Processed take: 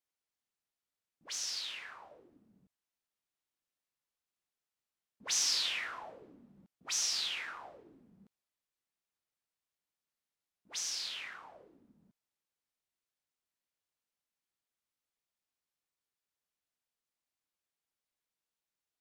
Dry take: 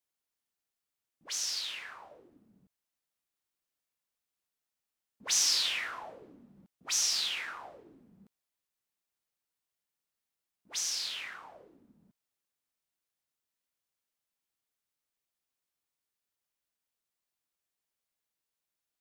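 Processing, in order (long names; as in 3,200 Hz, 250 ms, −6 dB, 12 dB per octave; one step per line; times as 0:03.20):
high-shelf EQ 11,000 Hz −9 dB
level −2.5 dB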